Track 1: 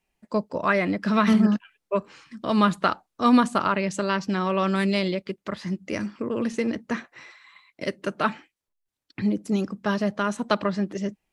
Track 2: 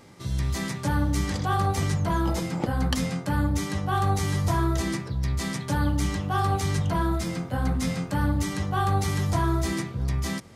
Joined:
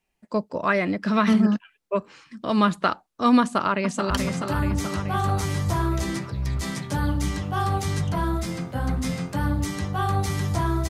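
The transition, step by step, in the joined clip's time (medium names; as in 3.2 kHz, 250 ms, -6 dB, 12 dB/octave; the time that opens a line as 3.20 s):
track 1
3.41–4.10 s: echo throw 430 ms, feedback 65%, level -6 dB
4.10 s: go over to track 2 from 2.88 s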